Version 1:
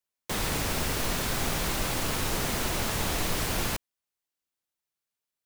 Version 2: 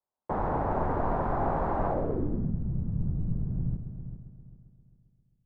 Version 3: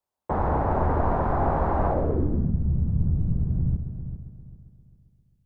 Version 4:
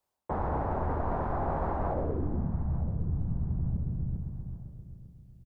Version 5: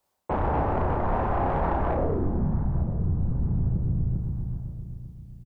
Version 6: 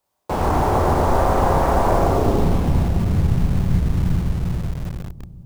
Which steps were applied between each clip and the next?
high shelf with overshoot 2,100 Hz −7 dB, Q 1.5; echo machine with several playback heads 133 ms, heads first and third, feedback 47%, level −10.5 dB; low-pass filter sweep 840 Hz → 150 Hz, 0:01.85–0:02.57
parametric band 74 Hz +9.5 dB 0.49 octaves; level +4 dB
reversed playback; downward compressor 5 to 1, threshold −33 dBFS, peak gain reduction 14 dB; reversed playback; repeating echo 897 ms, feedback 29%, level −17 dB; level +4.5 dB
soft clipping −25.5 dBFS, distortion −17 dB; double-tracking delay 33 ms −4.5 dB; level +6.5 dB
convolution reverb RT60 2.4 s, pre-delay 59 ms, DRR −2.5 dB; in parallel at −5.5 dB: bit reduction 5 bits

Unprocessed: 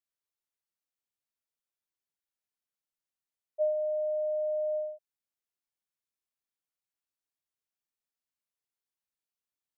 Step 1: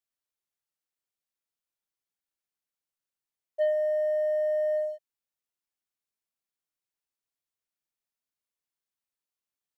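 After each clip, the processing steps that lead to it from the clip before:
leveller curve on the samples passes 1
level +1.5 dB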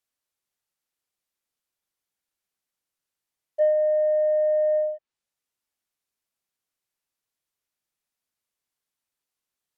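treble cut that deepens with the level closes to 1,200 Hz, closed at −29.5 dBFS
level +5.5 dB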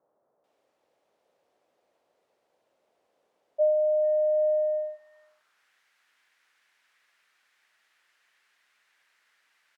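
background noise white −54 dBFS
multiband delay without the direct sound lows, highs 440 ms, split 1,300 Hz
band-pass filter sweep 570 Hz → 1,700 Hz, 0:04.34–0:05.72
level −1.5 dB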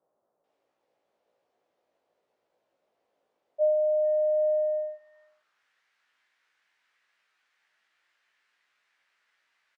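high-frequency loss of the air 55 metres
double-tracking delay 18 ms −3.5 dB
level −5 dB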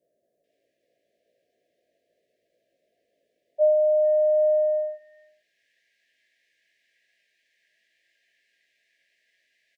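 brick-wall band-stop 720–1,600 Hz
level +4.5 dB

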